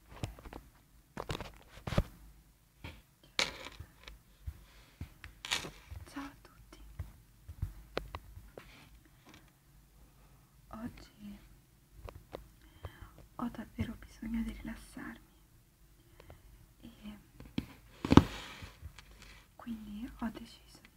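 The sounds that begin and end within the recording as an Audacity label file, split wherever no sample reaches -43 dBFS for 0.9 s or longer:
10.710000	15.160000	sound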